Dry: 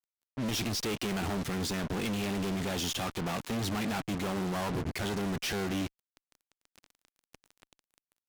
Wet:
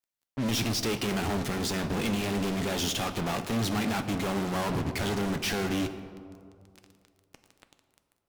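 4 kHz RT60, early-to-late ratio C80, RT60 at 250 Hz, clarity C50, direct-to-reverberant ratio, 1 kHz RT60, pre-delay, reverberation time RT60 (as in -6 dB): 1.1 s, 11.5 dB, 2.4 s, 10.5 dB, 8.0 dB, 2.3 s, 4 ms, 2.5 s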